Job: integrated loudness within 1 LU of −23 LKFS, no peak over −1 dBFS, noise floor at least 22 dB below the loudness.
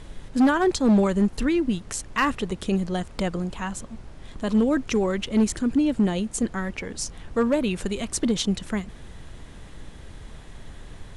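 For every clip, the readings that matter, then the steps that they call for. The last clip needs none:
share of clipped samples 1.0%; peaks flattened at −14.0 dBFS; background noise floor −43 dBFS; target noise floor −47 dBFS; integrated loudness −24.5 LKFS; sample peak −14.0 dBFS; target loudness −23.0 LKFS
→ clipped peaks rebuilt −14 dBFS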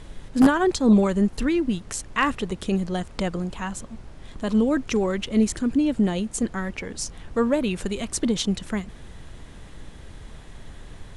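share of clipped samples 0.0%; background noise floor −43 dBFS; target noise floor −46 dBFS
→ noise reduction from a noise print 6 dB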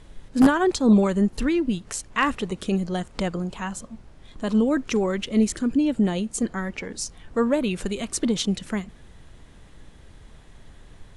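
background noise floor −49 dBFS; integrated loudness −24.0 LKFS; sample peak −5.0 dBFS; target loudness −23.0 LKFS
→ level +1 dB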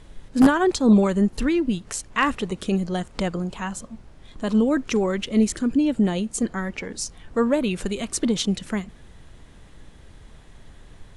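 integrated loudness −23.0 LKFS; sample peak −4.0 dBFS; background noise floor −48 dBFS

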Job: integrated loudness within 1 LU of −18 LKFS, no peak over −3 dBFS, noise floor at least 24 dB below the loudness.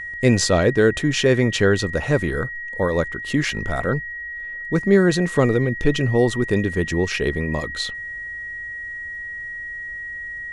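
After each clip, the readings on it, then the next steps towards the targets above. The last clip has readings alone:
crackle rate 25 per second; interfering tone 1,900 Hz; level of the tone −29 dBFS; integrated loudness −21.5 LKFS; sample peak −4.0 dBFS; target loudness −18.0 LKFS
→ click removal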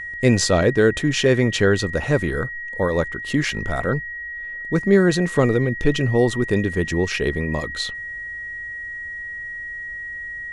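crackle rate 0.095 per second; interfering tone 1,900 Hz; level of the tone −29 dBFS
→ notch filter 1,900 Hz, Q 30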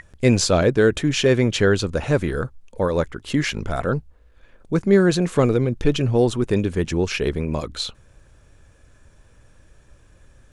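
interfering tone none found; integrated loudness −20.5 LKFS; sample peak −4.0 dBFS; target loudness −18.0 LKFS
→ level +2.5 dB
brickwall limiter −3 dBFS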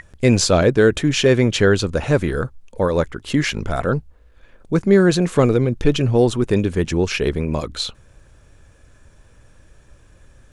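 integrated loudness −18.5 LKFS; sample peak −3.0 dBFS; background noise floor −51 dBFS

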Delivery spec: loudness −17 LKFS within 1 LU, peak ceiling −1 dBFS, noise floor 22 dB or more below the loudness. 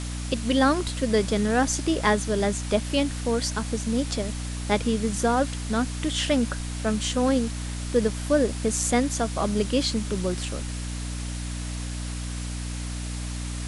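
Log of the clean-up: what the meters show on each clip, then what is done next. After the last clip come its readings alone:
mains hum 60 Hz; hum harmonics up to 300 Hz; level of the hum −29 dBFS; background noise floor −32 dBFS; target noise floor −48 dBFS; integrated loudness −26.0 LKFS; sample peak −8.0 dBFS; target loudness −17.0 LKFS
→ mains-hum notches 60/120/180/240/300 Hz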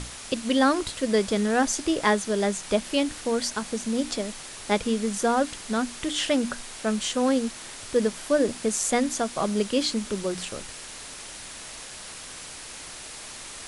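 mains hum none found; background noise floor −41 dBFS; target noise floor −48 dBFS
→ broadband denoise 7 dB, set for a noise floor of −41 dBFS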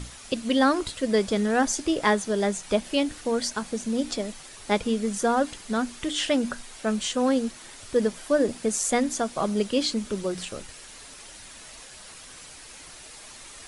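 background noise floor −45 dBFS; target noise floor −48 dBFS
→ broadband denoise 6 dB, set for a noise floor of −45 dBFS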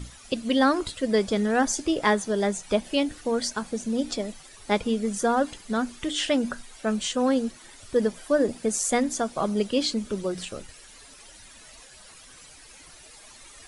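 background noise floor −49 dBFS; integrated loudness −26.0 LKFS; sample peak −9.0 dBFS; target loudness −17.0 LKFS
→ level +9 dB
brickwall limiter −1 dBFS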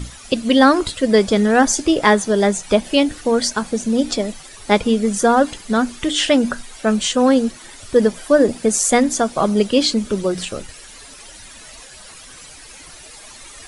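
integrated loudness −17.0 LKFS; sample peak −1.0 dBFS; background noise floor −40 dBFS

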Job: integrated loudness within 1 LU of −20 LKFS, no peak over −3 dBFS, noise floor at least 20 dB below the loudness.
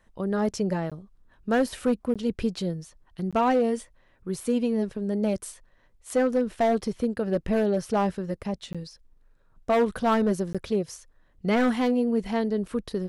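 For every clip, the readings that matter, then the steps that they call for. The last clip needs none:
share of clipped samples 1.2%; peaks flattened at −16.5 dBFS; number of dropouts 5; longest dropout 16 ms; integrated loudness −26.5 LKFS; sample peak −16.5 dBFS; target loudness −20.0 LKFS
→ clipped peaks rebuilt −16.5 dBFS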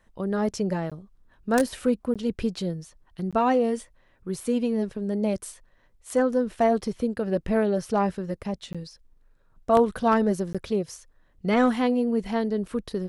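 share of clipped samples 0.0%; number of dropouts 5; longest dropout 16 ms
→ repair the gap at 0:00.90/0:02.14/0:03.31/0:08.73/0:10.53, 16 ms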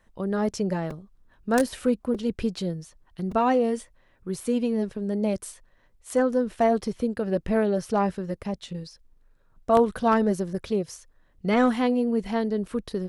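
number of dropouts 0; integrated loudness −26.0 LKFS; sample peak −7.5 dBFS; target loudness −20.0 LKFS
→ level +6 dB
brickwall limiter −3 dBFS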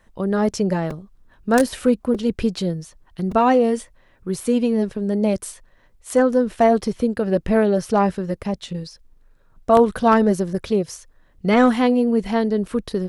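integrated loudness −20.0 LKFS; sample peak −3.0 dBFS; background noise floor −56 dBFS

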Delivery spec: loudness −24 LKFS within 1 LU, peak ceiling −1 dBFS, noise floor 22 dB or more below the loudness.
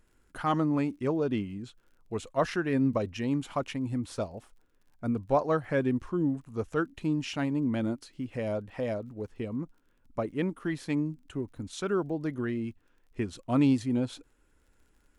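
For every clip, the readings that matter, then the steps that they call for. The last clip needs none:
crackle rate 32 per second; integrated loudness −31.0 LKFS; sample peak −13.0 dBFS; target loudness −24.0 LKFS
→ click removal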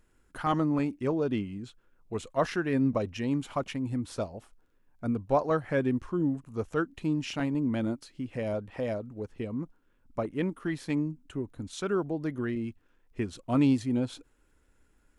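crackle rate 0 per second; integrated loudness −31.0 LKFS; sample peak −13.0 dBFS; target loudness −24.0 LKFS
→ level +7 dB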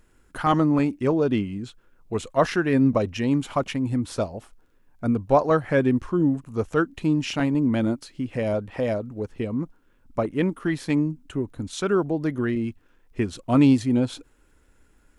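integrated loudness −24.0 LKFS; sample peak −6.0 dBFS; background noise floor −60 dBFS

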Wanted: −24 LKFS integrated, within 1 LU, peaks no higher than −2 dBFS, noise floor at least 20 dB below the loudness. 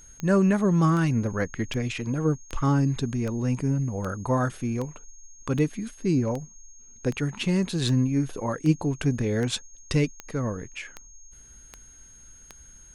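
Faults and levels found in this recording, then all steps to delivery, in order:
number of clicks 17; interfering tone 6,500 Hz; level of the tone −49 dBFS; integrated loudness −26.0 LKFS; sample peak −10.0 dBFS; target loudness −24.0 LKFS
→ click removal
notch filter 6,500 Hz, Q 30
level +2 dB

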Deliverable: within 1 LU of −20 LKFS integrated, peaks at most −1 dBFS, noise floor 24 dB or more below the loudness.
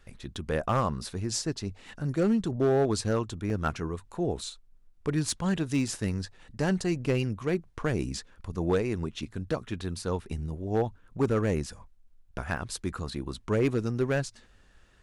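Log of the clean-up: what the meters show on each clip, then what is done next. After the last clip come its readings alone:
share of clipped samples 0.6%; peaks flattened at −18.5 dBFS; number of dropouts 4; longest dropout 1.9 ms; integrated loudness −30.5 LKFS; sample peak −18.5 dBFS; target loudness −20.0 LKFS
→ clipped peaks rebuilt −18.5 dBFS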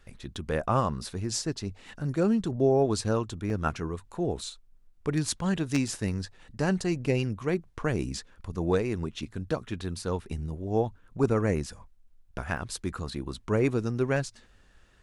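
share of clipped samples 0.0%; number of dropouts 4; longest dropout 1.9 ms
→ repair the gap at 0:00.36/0:03.50/0:05.88/0:12.57, 1.9 ms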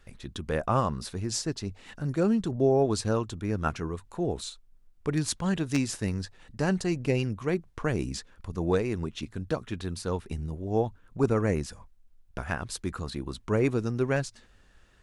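number of dropouts 0; integrated loudness −30.0 LKFS; sample peak −9.5 dBFS; target loudness −20.0 LKFS
→ level +10 dB
brickwall limiter −1 dBFS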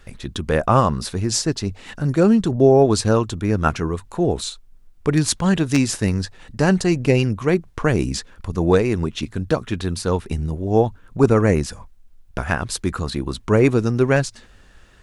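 integrated loudness −20.0 LKFS; sample peak −1.0 dBFS; background noise floor −49 dBFS

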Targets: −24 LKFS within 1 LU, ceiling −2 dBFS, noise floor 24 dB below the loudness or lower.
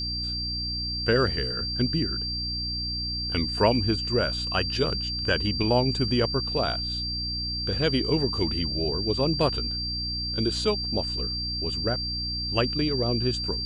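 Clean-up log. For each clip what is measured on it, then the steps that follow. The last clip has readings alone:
mains hum 60 Hz; hum harmonics up to 300 Hz; level of the hum −32 dBFS; interfering tone 4,700 Hz; level of the tone −29 dBFS; integrated loudness −25.5 LKFS; sample peak −7.5 dBFS; target loudness −24.0 LKFS
→ hum removal 60 Hz, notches 5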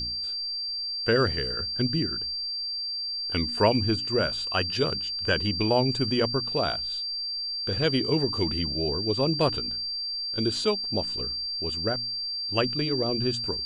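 mains hum none found; interfering tone 4,700 Hz; level of the tone −29 dBFS
→ notch filter 4,700 Hz, Q 30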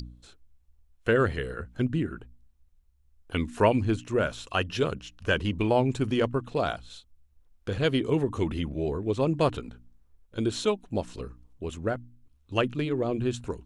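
interfering tone none found; integrated loudness −28.5 LKFS; sample peak −8.5 dBFS; target loudness −24.0 LKFS
→ level +4.5 dB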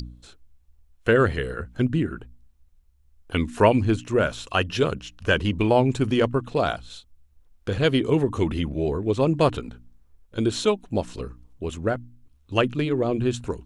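integrated loudness −24.0 LKFS; sample peak −4.0 dBFS; background noise floor −59 dBFS

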